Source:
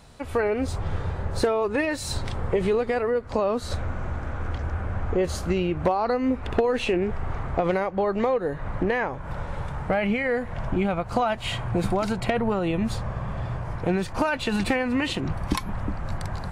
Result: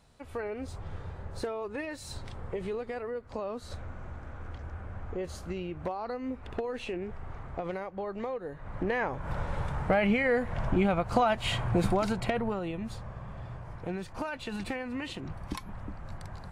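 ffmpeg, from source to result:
ffmpeg -i in.wav -af "volume=-1.5dB,afade=type=in:start_time=8.63:duration=0.64:silence=0.298538,afade=type=out:start_time=11.76:duration=1.02:silence=0.316228" out.wav

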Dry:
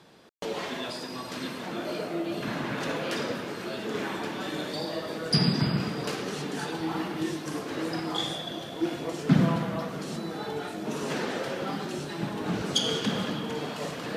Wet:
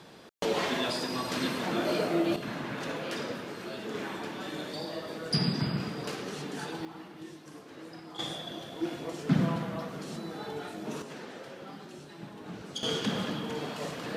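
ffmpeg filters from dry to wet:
ffmpeg -i in.wav -af "asetnsamples=nb_out_samples=441:pad=0,asendcmd='2.36 volume volume -4.5dB;6.85 volume volume -14.5dB;8.19 volume volume -4.5dB;11.02 volume volume -12.5dB;12.83 volume volume -2.5dB',volume=4dB" out.wav

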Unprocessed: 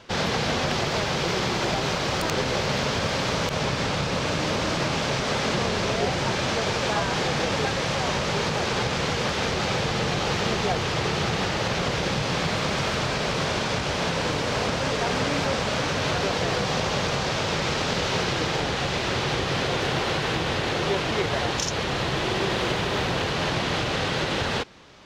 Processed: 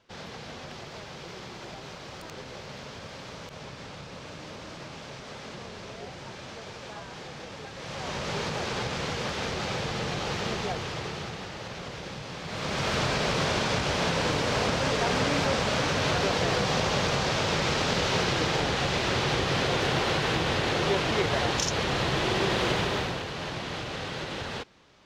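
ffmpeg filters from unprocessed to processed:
ffmpeg -i in.wav -af "volume=6dB,afade=type=in:start_time=7.72:duration=0.6:silence=0.298538,afade=type=out:start_time=10.54:duration=0.88:silence=0.446684,afade=type=in:start_time=12.44:duration=0.54:silence=0.251189,afade=type=out:start_time=22.8:duration=0.43:silence=0.398107" out.wav

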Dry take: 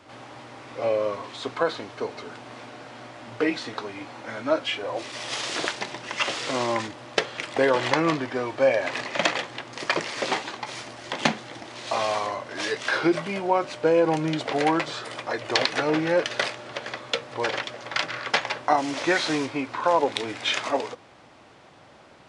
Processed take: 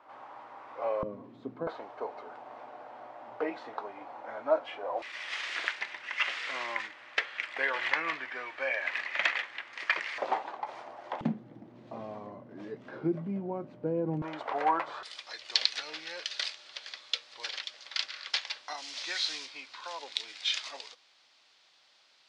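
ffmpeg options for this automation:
ffmpeg -i in.wav -af "asetnsamples=nb_out_samples=441:pad=0,asendcmd='1.03 bandpass f 210;1.67 bandpass f 790;5.02 bandpass f 2000;10.18 bandpass f 790;11.21 bandpass f 190;14.22 bandpass f 1000;15.03 bandpass f 4400',bandpass=frequency=960:width_type=q:width=2:csg=0" out.wav

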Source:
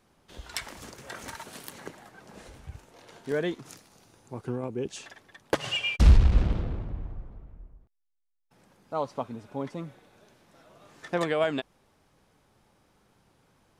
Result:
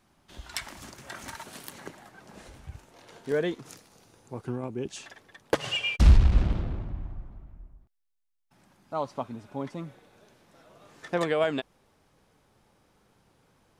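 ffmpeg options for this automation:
ffmpeg -i in.wav -af "asetnsamples=nb_out_samples=441:pad=0,asendcmd='1.33 equalizer g -4;3.1 equalizer g 3.5;4.42 equalizer g -7.5;5.1 equalizer g 3.5;5.97 equalizer g -5.5;6.89 equalizer g -13.5;8.93 equalizer g -6;9.86 equalizer g 2',equalizer=frequency=470:width_type=o:width=0.24:gain=-12.5" out.wav

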